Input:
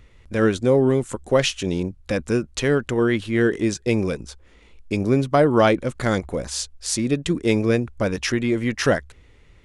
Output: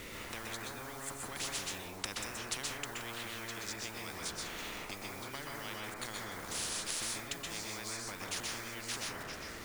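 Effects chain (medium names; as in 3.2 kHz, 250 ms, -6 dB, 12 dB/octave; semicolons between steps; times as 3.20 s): Doppler pass-by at 2.63 s, 10 m/s, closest 8.5 m; resonant low shelf 450 Hz +9 dB, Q 1.5; compression 6:1, threshold -44 dBFS, peak gain reduction 33 dB; word length cut 12-bit, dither none; thinning echo 968 ms, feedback 49%, level -19 dB; plate-style reverb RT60 0.63 s, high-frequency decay 0.25×, pre-delay 115 ms, DRR -4 dB; spectrum-flattening compressor 10:1; trim +9 dB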